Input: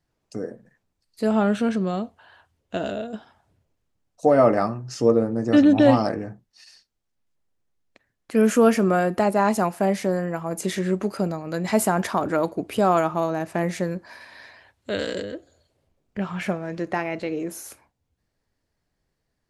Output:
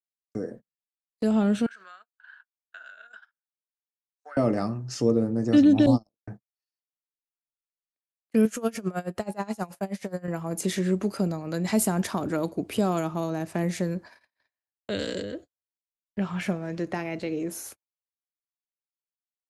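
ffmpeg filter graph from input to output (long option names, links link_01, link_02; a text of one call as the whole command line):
ffmpeg -i in.wav -filter_complex "[0:a]asettb=1/sr,asplit=3[link_01][link_02][link_03];[link_01]atrim=end=1.664[link_04];[link_02]atrim=start=1.66:end=4.37,asetpts=PTS-STARTPTS,afade=type=in:duration=0.004:curve=qsin,afade=type=out:start_time=2.706:duration=0.004:curve=qsin,highpass=frequency=1500:width_type=q:width=8.9,acompressor=threshold=-37dB:ratio=16:attack=3.2:release=140:knee=1:detection=peak[link_05];[link_03]atrim=start=4.366[link_06];[link_04][link_05]acrossfade=duration=0.004:curve1=hsin:curve2=qsin[link_07];[link_07][link_06]acrossfade=duration=0.004:curve1=qsin:curve2=hsin,asettb=1/sr,asplit=3[link_08][link_09][link_10];[link_08]atrim=end=5.864[link_11];[link_09]atrim=start=5.86:end=6.27,asetpts=PTS-STARTPTS,afade=type=in:duration=0.004:curve=qsin,afade=type=out:start_time=0.406:duration=0.004:curve=qsin,agate=range=-58dB:threshold=-18dB:ratio=16:release=100:detection=peak,asuperstop=centerf=2100:order=8:qfactor=0.82[link_12];[link_10]atrim=start=6.266[link_13];[link_11][link_12]acrossfade=duration=0.004:curve1=hsin:curve2=qsin[link_14];[link_14][link_13]acrossfade=duration=0.004:curve1=qsin:curve2=hsin,asettb=1/sr,asplit=3[link_15][link_16][link_17];[link_15]atrim=end=8.454[link_18];[link_16]atrim=start=8.45:end=10.28,asetpts=PTS-STARTPTS,afade=type=in:duration=0.004:curve=qsin,afade=type=out:start_time=1.826:duration=0.004:curve=qsin,equalizer=frequency=280:width_type=o:width=0.71:gain=-9,bandreject=frequency=277.1:width_type=h:width=4,bandreject=frequency=554.2:width_type=h:width=4,bandreject=frequency=831.3:width_type=h:width=4,bandreject=frequency=1108.4:width_type=h:width=4,bandreject=frequency=1385.5:width_type=h:width=4,bandreject=frequency=1662.6:width_type=h:width=4,bandreject=frequency=1939.7:width_type=h:width=4,bandreject=frequency=2216.8:width_type=h:width=4,bandreject=frequency=2493.9:width_type=h:width=4,bandreject=frequency=2771:width_type=h:width=4,bandreject=frequency=3048.1:width_type=h:width=4,bandreject=frequency=3325.2:width_type=h:width=4,bandreject=frequency=3602.3:width_type=h:width=4,bandreject=frequency=3879.4:width_type=h:width=4,bandreject=frequency=4156.5:width_type=h:width=4,bandreject=frequency=4433.6:width_type=h:width=4,bandreject=frequency=4710.7:width_type=h:width=4,bandreject=frequency=4987.8:width_type=h:width=4,bandreject=frequency=5264.9:width_type=h:width=4,bandreject=frequency=5542:width_type=h:width=4,bandreject=frequency=5819.1:width_type=h:width=4,bandreject=frequency=6096.2:width_type=h:width=4,bandreject=frequency=6373.3:width_type=h:width=4,bandreject=frequency=6650.4:width_type=h:width=4,bandreject=frequency=6927.5:width_type=h:width=4,bandreject=frequency=7204.6:width_type=h:width=4,bandreject=frequency=7481.7:width_type=h:width=4,bandreject=frequency=7758.8:width_type=h:width=4,bandreject=frequency=8035.9:width_type=h:width=4,bandreject=frequency=8313:width_type=h:width=4,bandreject=frequency=8590.1:width_type=h:width=4,bandreject=frequency=8867.2:width_type=h:width=4,bandreject=frequency=9144.3:width_type=h:width=4,bandreject=frequency=9421.4:width_type=h:width=4,bandreject=frequency=9698.5:width_type=h:width=4,bandreject=frequency=9975.6:width_type=h:width=4,bandreject=frequency=10252.7:width_type=h:width=4,bandreject=frequency=10529.8:width_type=h:width=4,aeval=exprs='val(0)*pow(10,-23*(0.5-0.5*cos(2*PI*9.4*n/s))/20)':channel_layout=same[link_19];[link_17]atrim=start=10.276[link_20];[link_18][link_19]acrossfade=duration=0.004:curve1=hsin:curve2=qsin[link_21];[link_21][link_20]acrossfade=duration=0.004:curve1=qsin:curve2=hsin,agate=range=-48dB:threshold=-40dB:ratio=16:detection=peak,acrossover=split=370|3000[link_22][link_23][link_24];[link_23]acompressor=threshold=-38dB:ratio=2[link_25];[link_22][link_25][link_24]amix=inputs=3:normalize=0" out.wav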